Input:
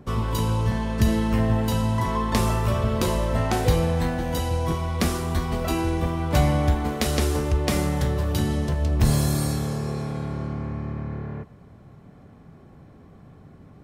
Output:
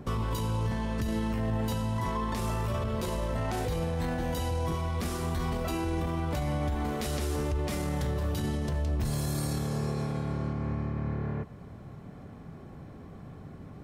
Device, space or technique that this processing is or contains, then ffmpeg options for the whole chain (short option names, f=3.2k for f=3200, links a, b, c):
stacked limiters: -af "alimiter=limit=-12.5dB:level=0:latency=1:release=323,alimiter=limit=-18.5dB:level=0:latency=1:release=16,alimiter=level_in=1.5dB:limit=-24dB:level=0:latency=1:release=291,volume=-1.5dB,volume=2.5dB"